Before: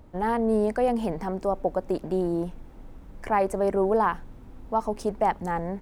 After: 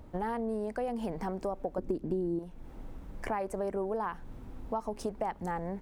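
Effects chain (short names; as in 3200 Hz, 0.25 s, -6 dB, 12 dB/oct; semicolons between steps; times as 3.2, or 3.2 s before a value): 1.78–2.39 resonant low shelf 480 Hz +9.5 dB, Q 1.5; compressor 6:1, threshold -31 dBFS, peak gain reduction 17.5 dB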